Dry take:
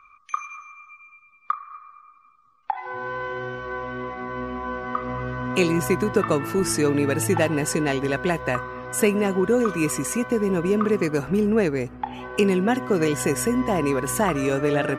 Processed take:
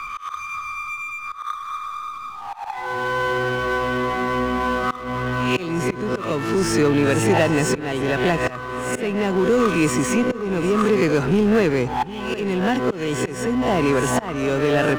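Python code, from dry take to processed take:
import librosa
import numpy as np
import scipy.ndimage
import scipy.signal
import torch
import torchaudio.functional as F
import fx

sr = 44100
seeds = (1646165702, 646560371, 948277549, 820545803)

y = fx.spec_swells(x, sr, rise_s=0.4)
y = scipy.signal.sosfilt(scipy.signal.butter(2, 6100.0, 'lowpass', fs=sr, output='sos'), y)
y = fx.peak_eq(y, sr, hz=3200.0, db=4.5, octaves=0.29)
y = fx.auto_swell(y, sr, attack_ms=662.0)
y = fx.power_curve(y, sr, exponent=0.7)
y = y + 10.0 ** (-19.0 / 20.0) * np.pad(y, (int(753 * sr / 1000.0), 0))[:len(y)]
y = fx.band_squash(y, sr, depth_pct=40)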